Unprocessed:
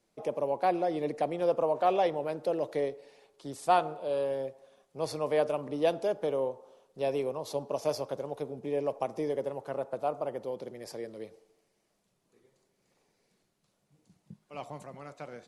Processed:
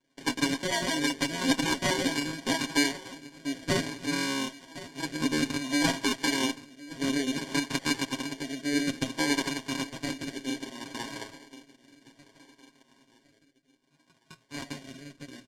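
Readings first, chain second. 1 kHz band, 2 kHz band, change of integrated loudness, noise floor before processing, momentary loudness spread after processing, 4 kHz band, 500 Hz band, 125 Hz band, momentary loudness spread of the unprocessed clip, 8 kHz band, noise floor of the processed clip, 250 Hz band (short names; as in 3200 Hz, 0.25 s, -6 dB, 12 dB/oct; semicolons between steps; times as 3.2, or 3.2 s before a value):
-4.0 dB, +14.5 dB, +2.5 dB, -76 dBFS, 15 LU, +16.5 dB, -7.5 dB, +6.0 dB, 17 LU, +18.0 dB, -68 dBFS, +10.0 dB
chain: minimum comb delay 0.8 ms; notches 60/120 Hz; small resonant body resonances 280/660/1000/3700 Hz, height 14 dB, ringing for 35 ms; on a send: feedback echo 1.068 s, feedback 41%, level -17.5 dB; on the sum: sample-and-hold 34×; rotary speaker horn 6.3 Hz, later 0.6 Hz, at 1.62; LPF 6600 Hz 12 dB/oct; tilt +3 dB/oct; comb 7.4 ms, depth 67%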